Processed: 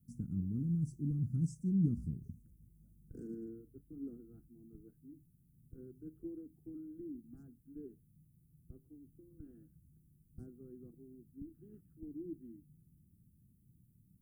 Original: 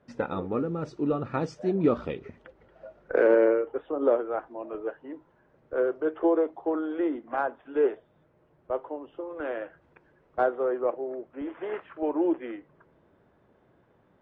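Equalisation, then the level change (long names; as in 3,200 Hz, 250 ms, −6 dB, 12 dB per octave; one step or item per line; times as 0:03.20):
inverse Chebyshev band-stop filter 540–3,800 Hz, stop band 60 dB
tilt shelving filter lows −4 dB, about 1,100 Hz
low-shelf EQ 360 Hz −5.5 dB
+12.0 dB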